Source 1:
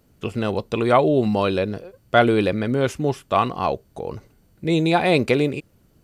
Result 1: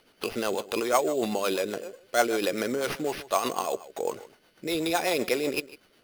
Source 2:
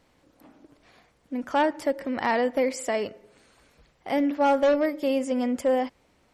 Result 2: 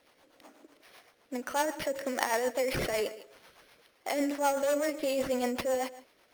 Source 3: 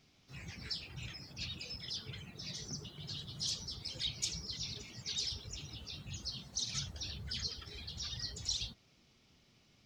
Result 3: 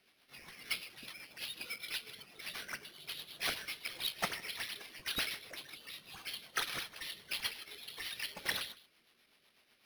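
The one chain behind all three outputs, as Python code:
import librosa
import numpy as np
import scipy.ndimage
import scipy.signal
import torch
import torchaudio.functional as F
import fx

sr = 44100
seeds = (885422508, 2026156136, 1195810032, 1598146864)

p1 = scipy.signal.sosfilt(scipy.signal.butter(2, 460.0, 'highpass', fs=sr, output='sos'), x)
p2 = fx.over_compress(p1, sr, threshold_db=-30.0, ratio=-0.5)
p3 = p1 + (p2 * 10.0 ** (-1.0 / 20.0))
p4 = fx.high_shelf(p3, sr, hz=5800.0, db=6.0)
p5 = p4 + fx.echo_single(p4, sr, ms=155, db=-17.5, dry=0)
p6 = fx.sample_hold(p5, sr, seeds[0], rate_hz=7500.0, jitter_pct=0)
p7 = fx.rotary(p6, sr, hz=8.0)
y = p7 * 10.0 ** (-4.0 / 20.0)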